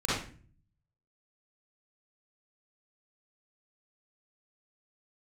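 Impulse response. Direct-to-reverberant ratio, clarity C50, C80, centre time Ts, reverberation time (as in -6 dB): -10.0 dB, -3.5 dB, 5.0 dB, 65 ms, 0.40 s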